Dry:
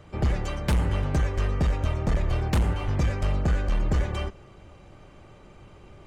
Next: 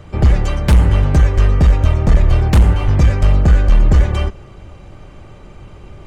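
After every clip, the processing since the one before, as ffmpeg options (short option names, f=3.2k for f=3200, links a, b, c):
-af "lowshelf=f=120:g=7,volume=8.5dB"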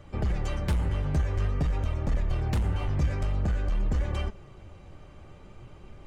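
-af "alimiter=limit=-9dB:level=0:latency=1:release=59,flanger=delay=3.5:depth=10:regen=62:speed=0.49:shape=sinusoidal,volume=-6.5dB"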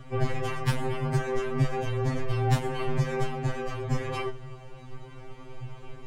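-af "afftfilt=real='re*2.45*eq(mod(b,6),0)':imag='im*2.45*eq(mod(b,6),0)':win_size=2048:overlap=0.75,volume=8dB"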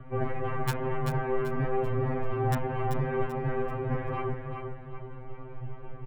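-filter_complex "[0:a]acrossover=split=330|2200[a][b][c];[a]asoftclip=type=tanh:threshold=-25dB[d];[c]acrusher=bits=4:mix=0:aa=0.000001[e];[d][b][e]amix=inputs=3:normalize=0,aecho=1:1:387|774|1161|1548:0.501|0.18|0.065|0.0234"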